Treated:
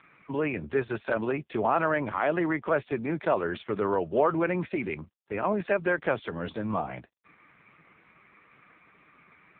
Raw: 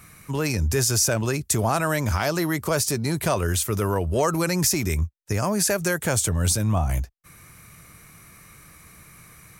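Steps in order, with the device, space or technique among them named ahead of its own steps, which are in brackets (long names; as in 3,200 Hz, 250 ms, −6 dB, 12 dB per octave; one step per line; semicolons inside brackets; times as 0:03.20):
telephone (band-pass filter 250–3,100 Hz; AMR narrowband 4.75 kbit/s 8,000 Hz)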